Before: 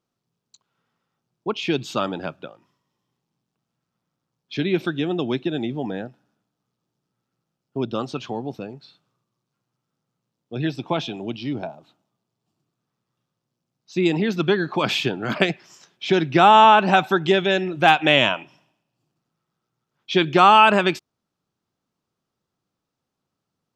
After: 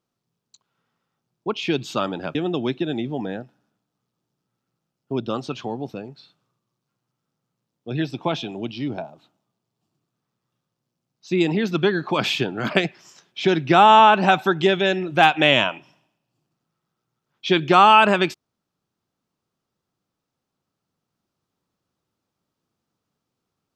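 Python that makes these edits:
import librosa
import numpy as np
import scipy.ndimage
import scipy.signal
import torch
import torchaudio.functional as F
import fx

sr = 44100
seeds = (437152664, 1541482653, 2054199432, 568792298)

y = fx.edit(x, sr, fx.cut(start_s=2.35, length_s=2.65), tone=tone)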